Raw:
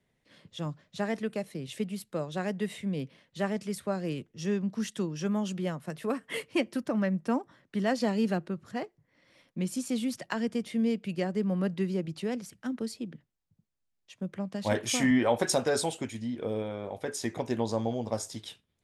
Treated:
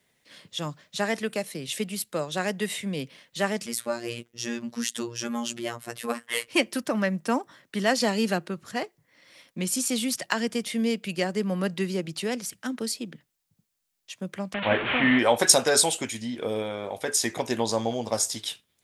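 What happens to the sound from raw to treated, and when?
0:03.66–0:06.48: phases set to zero 118 Hz
0:14.54–0:15.19: linear delta modulator 16 kbit/s, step −28.5 dBFS
whole clip: spectral tilt +2.5 dB per octave; level +6.5 dB

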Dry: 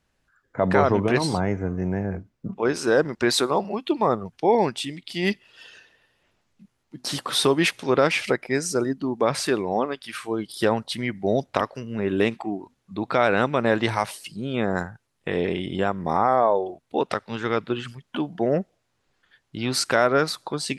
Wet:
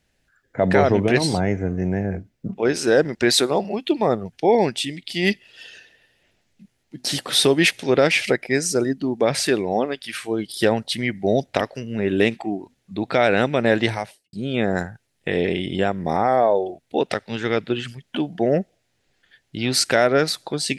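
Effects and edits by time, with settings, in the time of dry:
0:13.78–0:14.33: fade out and dull
whole clip: drawn EQ curve 730 Hz 0 dB, 1,100 Hz −10 dB, 1,800 Hz +2 dB; level +3 dB

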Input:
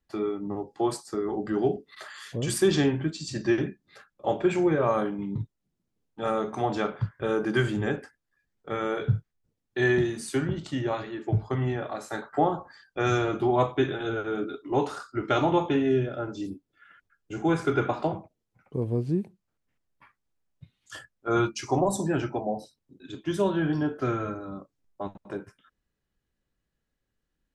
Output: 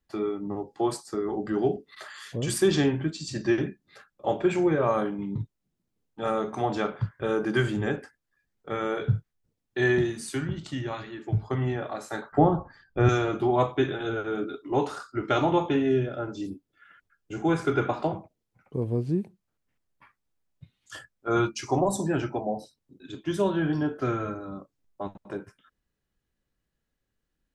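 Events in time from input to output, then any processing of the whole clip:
0:10.11–0:11.43: dynamic equaliser 520 Hz, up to −7 dB, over −41 dBFS, Q 0.74
0:12.32–0:13.09: RIAA equalisation playback

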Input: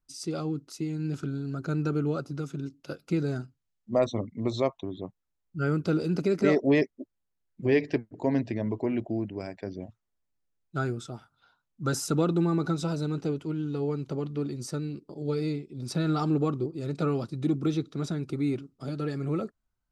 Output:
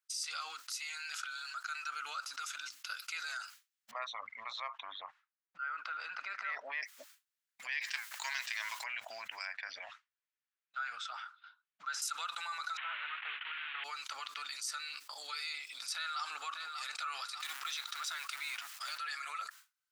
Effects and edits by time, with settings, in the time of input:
0:00.48–0:01.87: high-pass filter 280 Hz → 880 Hz
0:03.91–0:06.83: low-pass filter 1,600 Hz
0:07.81–0:08.82: spectral envelope flattened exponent 0.6
0:09.45–0:12.02: low-pass filter 3,000 Hz
0:12.77–0:13.84: variable-slope delta modulation 16 kbit/s
0:15.95–0:16.90: delay throw 590 ms, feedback 35%, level −16 dB
0:17.40–0:18.98: mu-law and A-law mismatch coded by mu
whole clip: downward expander −47 dBFS; inverse Chebyshev high-pass filter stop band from 390 Hz, stop band 60 dB; envelope flattener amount 70%; level −4.5 dB

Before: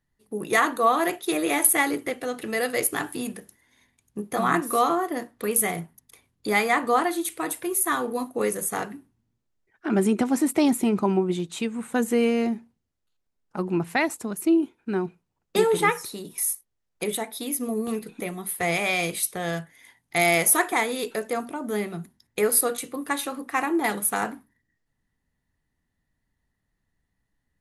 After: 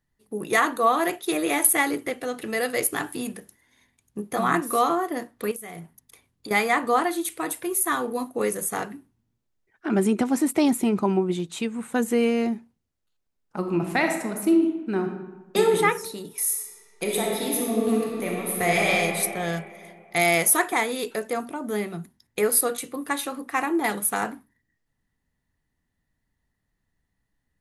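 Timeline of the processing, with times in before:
0:05.51–0:06.51: downward compressor 12 to 1, threshold −34 dBFS
0:13.58–0:15.74: thrown reverb, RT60 1.1 s, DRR 4 dB
0:16.41–0:18.87: thrown reverb, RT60 2.6 s, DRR −3 dB

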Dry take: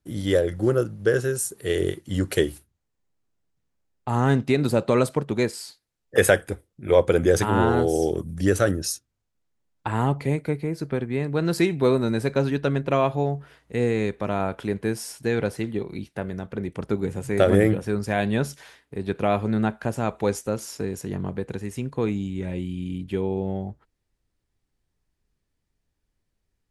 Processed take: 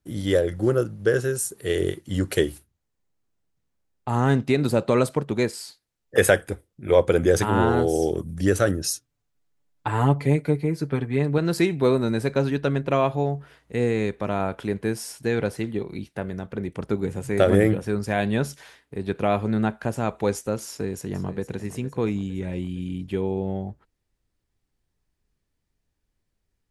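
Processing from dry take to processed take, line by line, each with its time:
0:08.83–0:11.38: comb filter 6.9 ms, depth 64%
0:20.68–0:21.54: delay throw 460 ms, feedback 50%, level −14 dB

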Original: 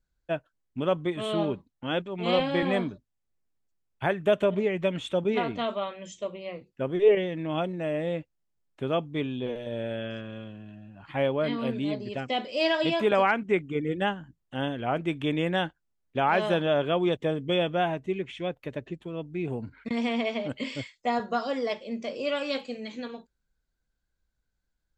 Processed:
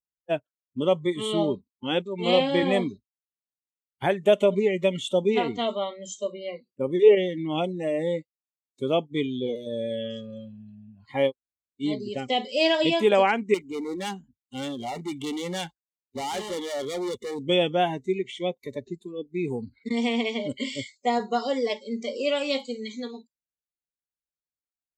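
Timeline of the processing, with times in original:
0:11.29–0:11.82: fill with room tone, crossfade 0.06 s
0:13.54–0:17.47: gain into a clipping stage and back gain 31 dB
whole clip: meter weighting curve D; noise reduction from a noise print of the clip's start 24 dB; flat-topped bell 2,500 Hz −11 dB 2.5 octaves; level +4.5 dB

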